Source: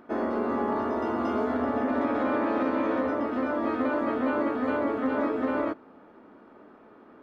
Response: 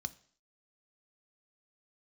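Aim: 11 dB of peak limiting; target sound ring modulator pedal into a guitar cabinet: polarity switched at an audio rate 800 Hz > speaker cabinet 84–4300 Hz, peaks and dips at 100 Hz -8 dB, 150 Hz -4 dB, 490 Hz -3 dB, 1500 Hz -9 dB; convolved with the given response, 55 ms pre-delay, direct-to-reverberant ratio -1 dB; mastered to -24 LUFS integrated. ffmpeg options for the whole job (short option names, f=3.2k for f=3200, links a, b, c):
-filter_complex "[0:a]alimiter=level_in=3.5dB:limit=-24dB:level=0:latency=1,volume=-3.5dB,asplit=2[a][b];[1:a]atrim=start_sample=2205,adelay=55[c];[b][c]afir=irnorm=-1:irlink=0,volume=2.5dB[d];[a][d]amix=inputs=2:normalize=0,aeval=exprs='val(0)*sgn(sin(2*PI*800*n/s))':c=same,highpass=84,equalizer=f=100:t=q:w=4:g=-8,equalizer=f=150:t=q:w=4:g=-4,equalizer=f=490:t=q:w=4:g=-3,equalizer=f=1.5k:t=q:w=4:g=-9,lowpass=f=4.3k:w=0.5412,lowpass=f=4.3k:w=1.3066,volume=8.5dB"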